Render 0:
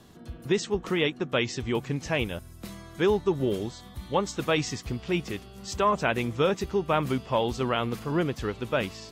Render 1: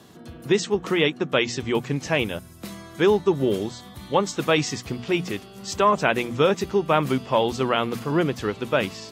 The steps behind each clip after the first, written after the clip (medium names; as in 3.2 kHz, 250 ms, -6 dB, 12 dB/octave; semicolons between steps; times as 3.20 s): high-pass 110 Hz 12 dB/octave; hum notches 60/120/180/240 Hz; trim +5 dB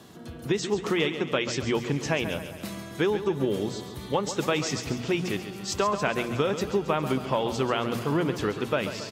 compression, threshold -22 dBFS, peak gain reduction 8.5 dB; feedback delay 137 ms, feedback 55%, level -10.5 dB; on a send at -20 dB: reverberation RT60 3.6 s, pre-delay 55 ms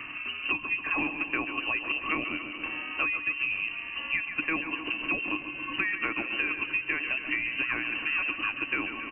frequency inversion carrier 2.9 kHz; small resonant body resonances 300/1100 Hz, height 17 dB, ringing for 85 ms; three bands compressed up and down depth 70%; trim -5 dB